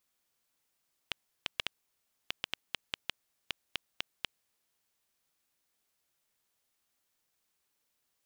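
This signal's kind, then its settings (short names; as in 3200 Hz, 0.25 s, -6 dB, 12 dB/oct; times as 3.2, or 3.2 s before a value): random clicks 3.7/s -13.5 dBFS 4.16 s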